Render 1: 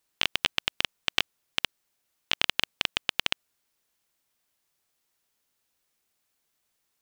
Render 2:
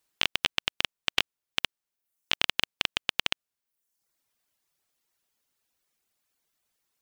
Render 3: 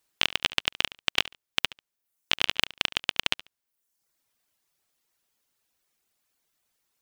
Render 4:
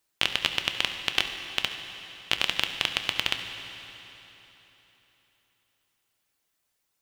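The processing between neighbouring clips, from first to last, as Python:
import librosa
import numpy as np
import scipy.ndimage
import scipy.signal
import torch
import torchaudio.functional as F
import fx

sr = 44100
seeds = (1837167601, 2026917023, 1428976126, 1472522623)

y1 = fx.dereverb_blind(x, sr, rt60_s=0.77)
y2 = fx.echo_feedback(y1, sr, ms=71, feedback_pct=20, wet_db=-18.5)
y2 = y2 * librosa.db_to_amplitude(2.0)
y3 = fx.rev_fdn(y2, sr, rt60_s=3.7, lf_ratio=1.0, hf_ratio=0.9, size_ms=53.0, drr_db=5.5)
y3 = y3 * librosa.db_to_amplitude(-1.5)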